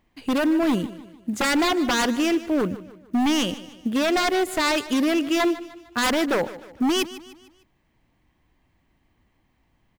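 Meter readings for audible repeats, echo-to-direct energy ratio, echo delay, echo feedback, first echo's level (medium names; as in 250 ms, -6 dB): 3, -15.0 dB, 151 ms, 44%, -16.0 dB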